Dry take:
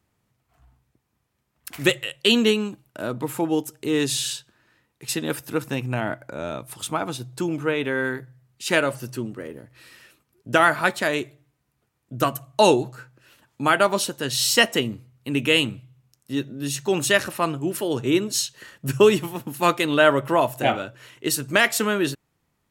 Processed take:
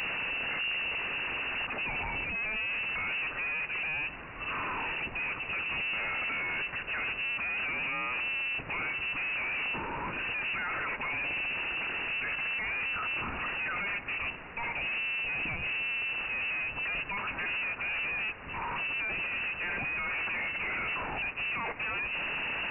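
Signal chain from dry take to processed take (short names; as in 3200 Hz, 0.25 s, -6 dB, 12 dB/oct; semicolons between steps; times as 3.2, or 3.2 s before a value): infinite clipping; inverted band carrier 2800 Hz; gain -8.5 dB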